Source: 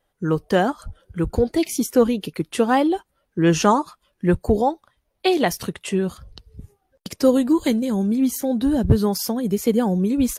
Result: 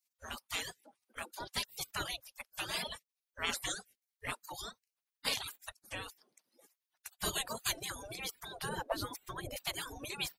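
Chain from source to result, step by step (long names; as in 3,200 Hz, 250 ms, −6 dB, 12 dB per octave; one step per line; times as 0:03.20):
0:08.69–0:09.56: tilt shelving filter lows +7.5 dB, about 790 Hz
gate on every frequency bin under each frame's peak −30 dB weak
reverb reduction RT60 1.2 s
level +3.5 dB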